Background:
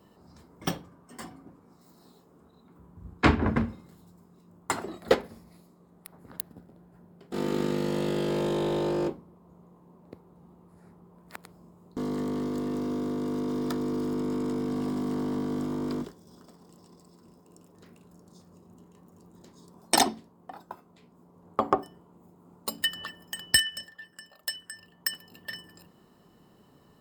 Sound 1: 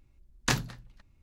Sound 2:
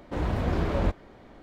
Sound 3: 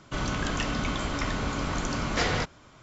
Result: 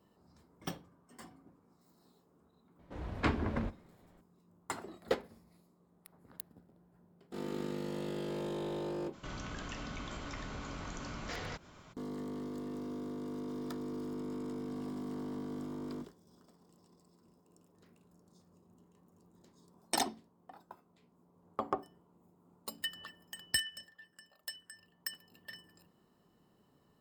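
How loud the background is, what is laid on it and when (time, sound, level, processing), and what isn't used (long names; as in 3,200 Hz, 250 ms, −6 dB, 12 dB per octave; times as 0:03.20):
background −10.5 dB
0:02.79: mix in 2 −15 dB
0:09.12: mix in 3 −3.5 dB, fades 0.02 s + downward compressor 2 to 1, threshold −44 dBFS
not used: 1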